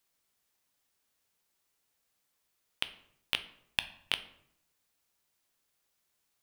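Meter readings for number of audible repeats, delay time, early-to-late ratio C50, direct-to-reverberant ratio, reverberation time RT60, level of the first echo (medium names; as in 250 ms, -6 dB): no echo, no echo, 14.0 dB, 10.0 dB, 0.75 s, no echo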